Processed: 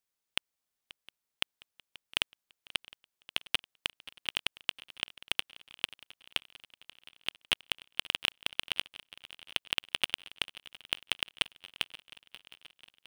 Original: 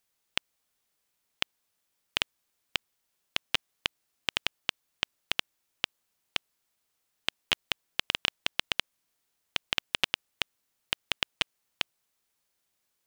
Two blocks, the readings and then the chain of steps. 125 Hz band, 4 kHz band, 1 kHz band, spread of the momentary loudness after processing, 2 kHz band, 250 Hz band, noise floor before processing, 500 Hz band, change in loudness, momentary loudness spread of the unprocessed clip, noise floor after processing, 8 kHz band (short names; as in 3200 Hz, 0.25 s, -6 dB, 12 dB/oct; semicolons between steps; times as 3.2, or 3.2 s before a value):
-4.0 dB, -1.5 dB, -4.5 dB, 20 LU, -2.5 dB, -4.0 dB, -79 dBFS, -4.5 dB, -1.5 dB, 6 LU, under -85 dBFS, -1.0 dB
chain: sample leveller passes 2; on a send: swung echo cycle 0.711 s, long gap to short 3:1, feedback 57%, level -19.5 dB; on the sum: gain -5 dB